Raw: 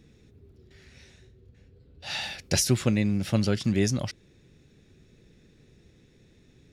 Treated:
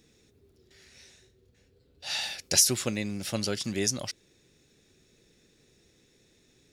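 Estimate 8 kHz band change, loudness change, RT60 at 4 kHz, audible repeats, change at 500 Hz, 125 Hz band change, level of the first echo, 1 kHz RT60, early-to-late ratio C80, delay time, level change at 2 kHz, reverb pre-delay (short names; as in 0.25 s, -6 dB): +5.5 dB, -1.0 dB, none, none, -3.5 dB, -11.0 dB, none, none, none, none, -1.5 dB, none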